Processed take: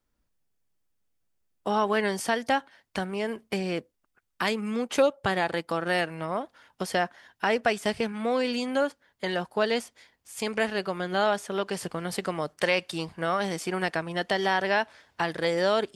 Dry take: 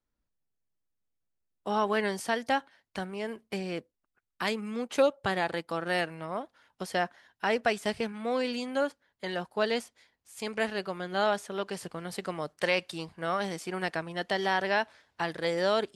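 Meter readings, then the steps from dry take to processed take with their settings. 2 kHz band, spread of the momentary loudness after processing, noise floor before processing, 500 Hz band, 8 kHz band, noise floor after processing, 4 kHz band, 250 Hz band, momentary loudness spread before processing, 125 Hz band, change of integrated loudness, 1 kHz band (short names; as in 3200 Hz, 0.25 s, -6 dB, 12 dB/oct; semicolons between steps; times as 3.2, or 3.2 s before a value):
+3.0 dB, 8 LU, -84 dBFS, +3.0 dB, +5.0 dB, -77 dBFS, +3.0 dB, +4.0 dB, 11 LU, +4.5 dB, +3.0 dB, +3.0 dB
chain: notch 4000 Hz, Q 27; in parallel at +2 dB: compressor, threshold -35 dBFS, peak gain reduction 15 dB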